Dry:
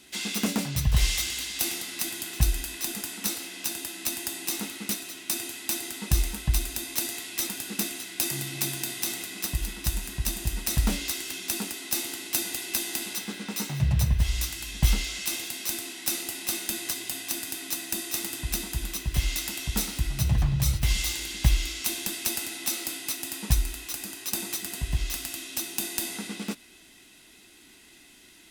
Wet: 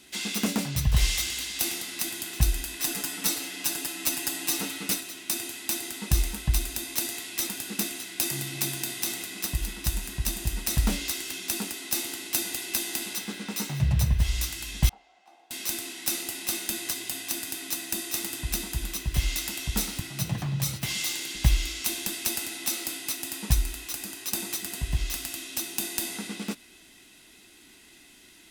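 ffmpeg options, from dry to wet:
-filter_complex "[0:a]asettb=1/sr,asplit=3[s0][s1][s2];[s0]atrim=end=2.794[s3];[s1]atrim=start=2.79:end=5.01,asetpts=PTS-STARTPTS,afade=t=in:d=0.004:c=qsin,afade=t=out:st=2.216:d=0.004:c=qsin,aecho=1:1:6.8:1,atrim=end_sample=97902[s4];[s2]atrim=start=5.006[s5];[s3][s4]acrossfade=d=0.004:c1=hsin:c2=qsin[s6];[s6][s5]acrossfade=d=0.004:c1=qsin:c2=hsin,asettb=1/sr,asplit=3[s7][s8][s9];[s7]atrim=end=14.894[s10];[s8]atrim=start=14.89:end=15.51,asetpts=PTS-STARTPTS,afade=t=in:d=0.004:c=qsin,afade=t=out:st=0.616:d=0.004:c=qsin,bandpass=f=770:t=q:w=9.2[s11];[s9]atrim=start=15.506[s12];[s10][s11]acrossfade=d=0.004:c1=hsin:c2=qsin[s13];[s13][s12]acrossfade=d=0.004:c1=qsin:c2=hsin,asettb=1/sr,asplit=3[s14][s15][s16];[s14]atrim=end=20.004[s17];[s15]atrim=start=20:end=21.35,asetpts=PTS-STARTPTS,afade=t=in:d=0.004:c=qsin,afade=t=out:st=1.346:d=0.004:c=qsin,highpass=f=130:w=0.5412,highpass=f=130:w=1.3066[s18];[s16]atrim=start=21.346[s19];[s17][s18]acrossfade=d=0.004:c1=hsin:c2=qsin[s20];[s20][s19]acrossfade=d=0.004:c1=qsin:c2=hsin"

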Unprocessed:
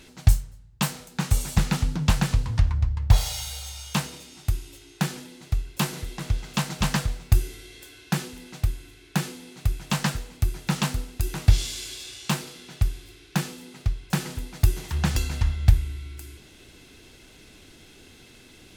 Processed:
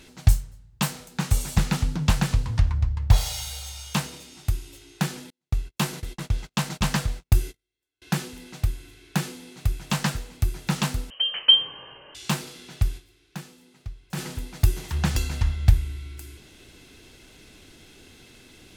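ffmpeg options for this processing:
-filter_complex "[0:a]asettb=1/sr,asplit=3[s0][s1][s2];[s0]atrim=end=5.304[s3];[s1]atrim=start=5.3:end=8.02,asetpts=PTS-STARTPTS,afade=t=in:d=0.004:c=qsin,afade=t=out:st=2.716:d=0.004:c=qsin,agate=range=0.00891:threshold=0.0126:ratio=16:release=100:detection=peak[s4];[s2]atrim=start=8.016[s5];[s3][s4]acrossfade=d=0.004:c1=hsin:c2=qsin[s6];[s6][s5]acrossfade=d=0.004:c1=qsin:c2=hsin,asettb=1/sr,asplit=3[s7][s8][s9];[s7]atrim=end=11.104[s10];[s8]atrim=start=11.1:end=12.15,asetpts=PTS-STARTPTS,afade=t=in:d=0.004:c=qsin,afade=t=out:st=1.046:d=0.004:c=qsin,lowpass=f=2700:t=q:w=0.5098,lowpass=f=2700:t=q:w=0.6013,lowpass=f=2700:t=q:w=0.9,lowpass=f=2700:t=q:w=2.563,afreqshift=-3200[s11];[s9]atrim=start=12.146[s12];[s10][s11]acrossfade=d=0.004:c1=hsin:c2=qsin[s13];[s13][s12]acrossfade=d=0.004:c1=qsin:c2=hsin,asplit=3[s14][s15][s16];[s14]atrim=end=13.26,asetpts=PTS-STARTPTS,afade=t=out:st=12.97:d=0.29:c=exp:silence=0.266073[s17];[s15]atrim=start=13.26:end=13.9,asetpts=PTS-STARTPTS,volume=0.266[s18];[s16]atrim=start=13.9,asetpts=PTS-STARTPTS,afade=t=in:d=0.29:c=exp:silence=0.266073[s19];[s17][s18][s19]concat=n=3:v=0:a=1"

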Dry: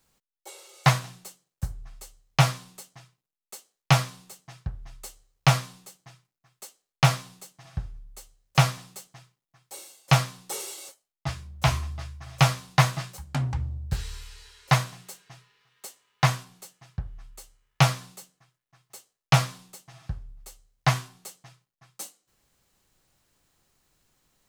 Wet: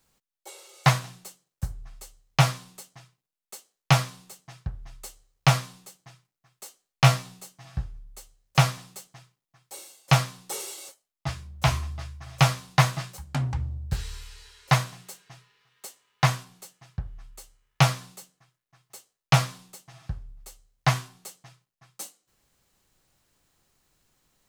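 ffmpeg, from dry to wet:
-filter_complex "[0:a]asettb=1/sr,asplit=3[s0][s1][s2];[s0]atrim=end=6.644[s3];[s1]atrim=start=6.64:end=7.84,asetpts=PTS-STARTPTS,afade=t=in:d=0.004:c=qsin,afade=t=out:st=1.196:d=0.004:c=qsin,asplit=2[s4][s5];[s5]adelay=16,volume=0.562[s6];[s4][s6]amix=inputs=2:normalize=0,atrim=end_sample=52920[s7];[s2]atrim=start=7.836[s8];[s3][s7]acrossfade=d=0.004:c1=hsin:c2=qsin[s9];[s9][s8]acrossfade=d=0.004:c1=qsin:c2=hsin"

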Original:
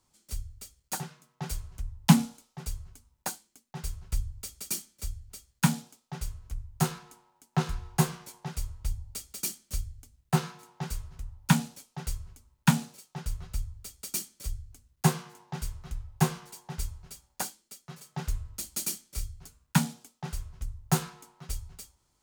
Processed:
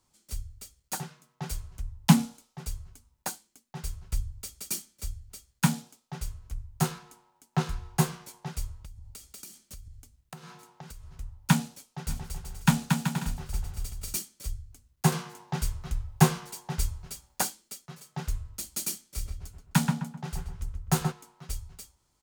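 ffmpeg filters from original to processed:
-filter_complex "[0:a]asettb=1/sr,asplit=3[s0][s1][s2];[s0]atrim=end=8.804[s3];[s1]atrim=start=8.8:end=11.16,asetpts=PTS-STARTPTS,afade=t=in:d=0.004:c=qsin,afade=t=out:st=2.356:d=0.004:c=qsin,acompressor=threshold=0.01:ratio=16:attack=3.2:release=140:knee=1:detection=peak[s4];[s2]atrim=start=11.156[s5];[s3][s4]acrossfade=d=0.004:c1=hsin:c2=qsin[s6];[s6][s5]acrossfade=d=0.004:c1=qsin:c2=hsin,asplit=3[s7][s8][s9];[s7]afade=t=out:st=12.08:d=0.02[s10];[s8]aecho=1:1:230|379.5|476.7|539.8|580.9|607.6:0.631|0.398|0.251|0.158|0.1|0.0631,afade=t=in:st=12.08:d=0.02,afade=t=out:st=14.15:d=0.02[s11];[s9]afade=t=in:st=14.15:d=0.02[s12];[s10][s11][s12]amix=inputs=3:normalize=0,asettb=1/sr,asplit=3[s13][s14][s15];[s13]atrim=end=15.124[s16];[s14]atrim=start=15.12:end=17.86,asetpts=PTS-STARTPTS,afade=t=in:d=0.004:c=qsin,afade=t=out:st=2.736:d=0.004:c=qsin,acontrast=34[s17];[s15]atrim=start=17.856[s18];[s16][s17]acrossfade=d=0.004:c1=hsin:c2=qsin[s19];[s19][s18]acrossfade=d=0.004:c1=qsin:c2=hsin,asplit=3[s20][s21][s22];[s20]afade=t=out:st=19.16:d=0.02[s23];[s21]asplit=2[s24][s25];[s25]adelay=129,lowpass=f=1800:p=1,volume=0.668,asplit=2[s26][s27];[s27]adelay=129,lowpass=f=1800:p=1,volume=0.4,asplit=2[s28][s29];[s29]adelay=129,lowpass=f=1800:p=1,volume=0.4,asplit=2[s30][s31];[s31]adelay=129,lowpass=f=1800:p=1,volume=0.4,asplit=2[s32][s33];[s33]adelay=129,lowpass=f=1800:p=1,volume=0.4[s34];[s24][s26][s28][s30][s32][s34]amix=inputs=6:normalize=0,afade=t=in:st=19.16:d=0.02,afade=t=out:st=21.11:d=0.02[s35];[s22]afade=t=in:st=21.11:d=0.02[s36];[s23][s35][s36]amix=inputs=3:normalize=0"

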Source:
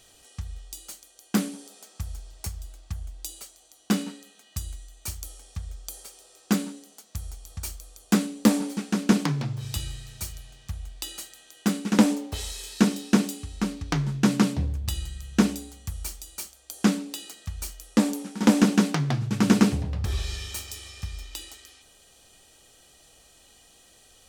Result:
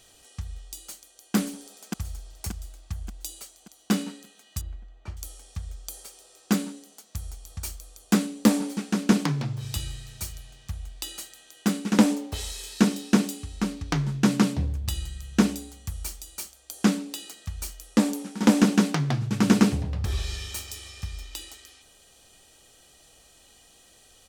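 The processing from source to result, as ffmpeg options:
-filter_complex "[0:a]asplit=2[s0][s1];[s1]afade=t=in:st=0.77:d=0.01,afade=t=out:st=1.35:d=0.01,aecho=0:1:580|1160|1740|2320|2900|3480:0.562341|0.281171|0.140585|0.0702927|0.0351463|0.0175732[s2];[s0][s2]amix=inputs=2:normalize=0,asettb=1/sr,asplit=3[s3][s4][s5];[s3]atrim=end=4.614[s6];[s4]atrim=start=4.61:end=5.17,asetpts=PTS-STARTPTS,afade=t=in:d=0.004:c=qsin,afade=t=out:st=0.556:d=0.004:c=qsin,lowpass=1800[s7];[s5]atrim=start=5.166[s8];[s6][s7]acrossfade=d=0.004:c1=hsin:c2=qsin[s9];[s9][s8]acrossfade=d=0.004:c1=qsin:c2=hsin"

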